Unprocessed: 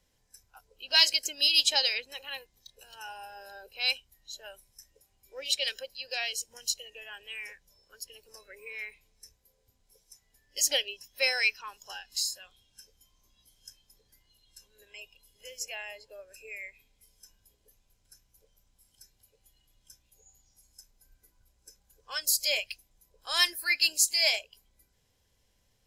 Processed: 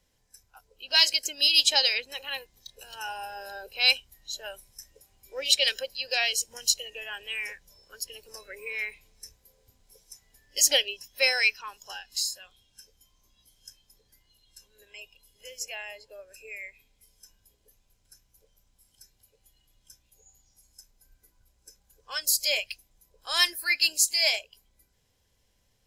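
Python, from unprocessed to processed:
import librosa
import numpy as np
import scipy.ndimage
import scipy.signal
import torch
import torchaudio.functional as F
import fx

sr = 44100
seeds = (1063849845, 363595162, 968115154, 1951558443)

y = fx.rider(x, sr, range_db=3, speed_s=2.0)
y = y * librosa.db_to_amplitude(4.0)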